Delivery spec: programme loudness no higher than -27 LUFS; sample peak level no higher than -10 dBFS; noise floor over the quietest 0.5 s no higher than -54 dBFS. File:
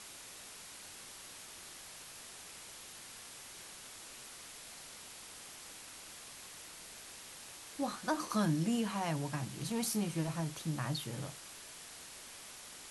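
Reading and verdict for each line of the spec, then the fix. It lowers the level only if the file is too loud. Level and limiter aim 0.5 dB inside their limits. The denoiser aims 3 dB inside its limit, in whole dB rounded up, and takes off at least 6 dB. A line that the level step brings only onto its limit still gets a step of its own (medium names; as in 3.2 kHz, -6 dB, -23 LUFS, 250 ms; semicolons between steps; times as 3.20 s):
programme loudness -41.0 LUFS: pass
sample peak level -21.0 dBFS: pass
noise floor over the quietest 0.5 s -51 dBFS: fail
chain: noise reduction 6 dB, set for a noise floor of -51 dBFS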